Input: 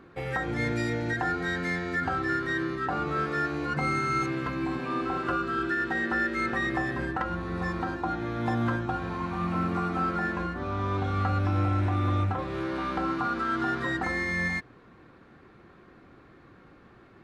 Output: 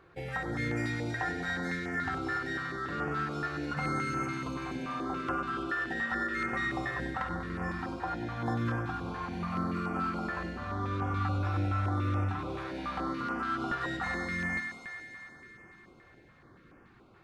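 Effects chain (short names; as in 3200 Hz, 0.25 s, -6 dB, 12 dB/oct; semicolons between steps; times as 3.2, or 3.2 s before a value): on a send: thinning echo 96 ms, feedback 83%, high-pass 220 Hz, level -8 dB; on the sum: stepped notch 7 Hz 240–3900 Hz; gain -4 dB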